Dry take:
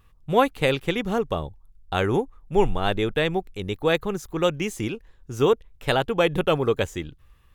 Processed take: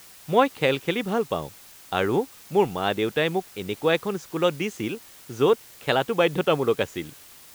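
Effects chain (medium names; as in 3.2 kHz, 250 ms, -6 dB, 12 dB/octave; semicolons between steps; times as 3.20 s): band-pass 150–5900 Hz; word length cut 8-bit, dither triangular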